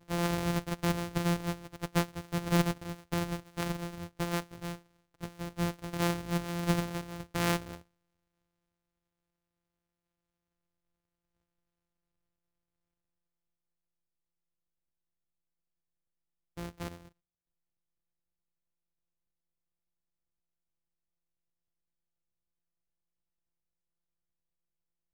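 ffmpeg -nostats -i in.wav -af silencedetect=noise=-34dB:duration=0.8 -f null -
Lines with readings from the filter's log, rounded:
silence_start: 7.75
silence_end: 16.58 | silence_duration: 8.83
silence_start: 16.88
silence_end: 25.14 | silence_duration: 8.26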